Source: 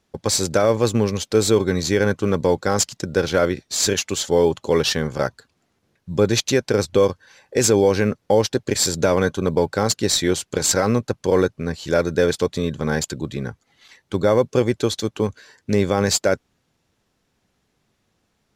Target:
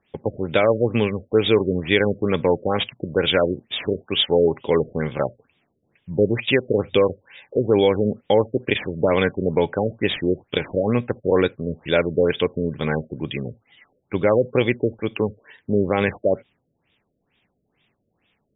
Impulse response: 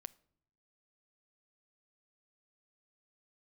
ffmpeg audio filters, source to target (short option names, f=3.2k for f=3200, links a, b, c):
-filter_complex "[0:a]aexciter=amount=5.6:drive=4:freq=2.1k,asplit=2[a][b];[1:a]atrim=start_sample=2205,afade=t=out:st=0.13:d=0.01,atrim=end_sample=6174,lowshelf=f=62:g=-11[c];[b][c]afir=irnorm=-1:irlink=0,volume=14.5dB[d];[a][d]amix=inputs=2:normalize=0,afftfilt=real='re*lt(b*sr/1024,640*pow(3800/640,0.5+0.5*sin(2*PI*2.2*pts/sr)))':imag='im*lt(b*sr/1024,640*pow(3800/640,0.5+0.5*sin(2*PI*2.2*pts/sr)))':win_size=1024:overlap=0.75,volume=-12dB"